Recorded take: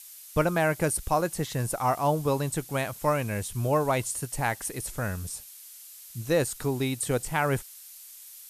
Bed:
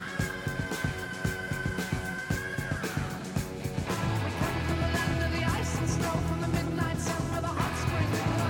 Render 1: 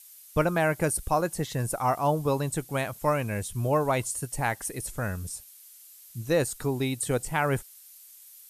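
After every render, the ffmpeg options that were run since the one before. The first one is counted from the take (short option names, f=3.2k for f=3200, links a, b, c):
-af "afftdn=nr=6:nf=-47"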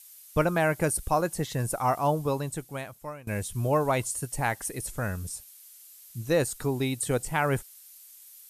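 -filter_complex "[0:a]asplit=2[a][b];[a]atrim=end=3.27,asetpts=PTS-STARTPTS,afade=t=out:st=2.03:d=1.24:silence=0.0841395[c];[b]atrim=start=3.27,asetpts=PTS-STARTPTS,afade=t=in:d=0.004:c=hsin:silence=0.0841395[d];[c][d]concat=n=2:v=0:a=1"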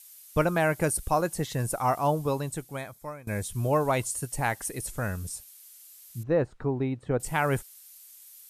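-filter_complex "[0:a]asettb=1/sr,asplit=3[a][b][c];[a]atrim=end=2.774[d];[b]atrim=start=2.77:end=3.44,asetpts=PTS-STARTPTS,afade=t=in:d=0.004:c=qsin,afade=t=out:st=0.666:d=0.004:c=qsin,asuperstop=centerf=2800:order=8:qfactor=5.6[e];[c]atrim=start=3.436[f];[d][e]acrossfade=d=0.004:c1=hsin:c2=qsin[g];[g][f]acrossfade=d=0.004:c1=qsin:c2=hsin,asettb=1/sr,asplit=3[h][i][j];[h]atrim=end=6.234[k];[i]atrim=start=6.23:end=7.2,asetpts=PTS-STARTPTS,afade=t=in:d=0.004:c=qsin,afade=t=out:st=0.966:d=0.004:c=qsin,lowpass=1.4k[l];[j]atrim=start=7.196[m];[k][l]acrossfade=d=0.004:c1=hsin:c2=qsin[n];[n][m]acrossfade=d=0.004:c1=qsin:c2=hsin"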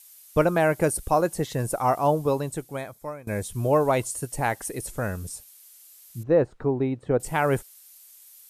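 -af "equalizer=f=450:w=0.69:g=5.5"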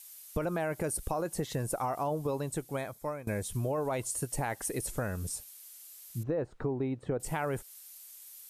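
-af "alimiter=limit=-16dB:level=0:latency=1:release=29,acompressor=threshold=-30dB:ratio=4"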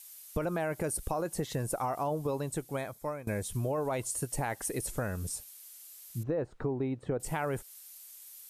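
-af anull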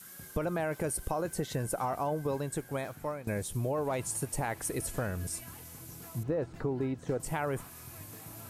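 -filter_complex "[1:a]volume=-21dB[a];[0:a][a]amix=inputs=2:normalize=0"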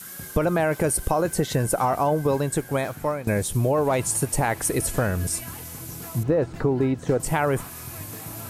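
-af "volume=10.5dB"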